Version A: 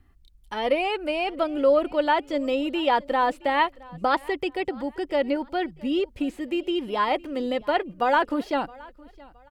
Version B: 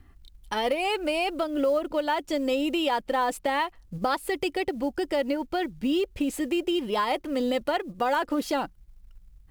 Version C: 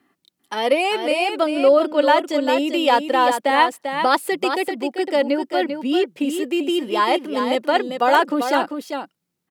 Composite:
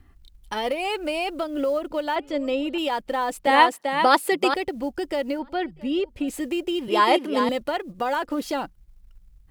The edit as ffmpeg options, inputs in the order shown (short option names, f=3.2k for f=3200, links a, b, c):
-filter_complex "[0:a]asplit=2[a][b];[2:a]asplit=2[c][d];[1:a]asplit=5[e][f][g][h][i];[e]atrim=end=2.162[j];[a]atrim=start=2.158:end=2.782[k];[f]atrim=start=2.778:end=3.472[l];[c]atrim=start=3.468:end=4.542[m];[g]atrim=start=4.538:end=5.392[n];[b]atrim=start=5.388:end=6.282[o];[h]atrim=start=6.278:end=6.882[p];[d]atrim=start=6.878:end=7.492[q];[i]atrim=start=7.488[r];[j][k]acrossfade=d=0.004:c1=hsin:c2=hsin[s];[s][l]acrossfade=d=0.004:c1=hsin:c2=hsin[t];[t][m]acrossfade=d=0.004:c1=hsin:c2=hsin[u];[u][n]acrossfade=d=0.004:c1=hsin:c2=hsin[v];[v][o]acrossfade=d=0.004:c1=hsin:c2=hsin[w];[w][p]acrossfade=d=0.004:c1=hsin:c2=hsin[x];[x][q]acrossfade=d=0.004:c1=hsin:c2=hsin[y];[y][r]acrossfade=d=0.004:c1=hsin:c2=hsin"